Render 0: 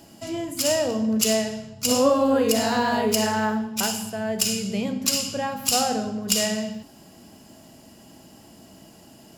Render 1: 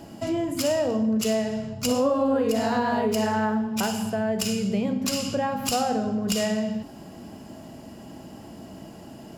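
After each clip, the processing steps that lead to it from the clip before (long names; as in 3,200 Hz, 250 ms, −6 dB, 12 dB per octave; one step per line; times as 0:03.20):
high-shelf EQ 2,600 Hz −11.5 dB
downward compressor 2.5 to 1, threshold −32 dBFS, peak gain reduction 11.5 dB
level +7.5 dB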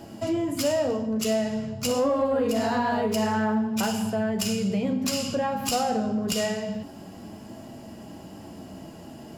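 flanger 0.26 Hz, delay 8.6 ms, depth 5.3 ms, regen −42%
in parallel at −4.5 dB: soft clipping −24.5 dBFS, distortion −16 dB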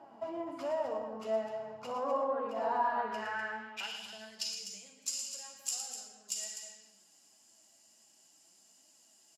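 loudspeakers that aren't time-aligned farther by 39 metres −8 dB, 86 metres −9 dB
band-pass filter sweep 930 Hz → 7,300 Hz, 0:02.76–0:04.90
flanger 0.45 Hz, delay 3.2 ms, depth 7.4 ms, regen +58%
level +2 dB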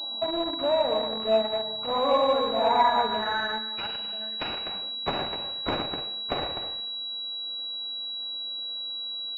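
in parallel at −7 dB: bit-depth reduction 6 bits, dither none
on the sum: switching amplifier with a slow clock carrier 3,900 Hz
level +7 dB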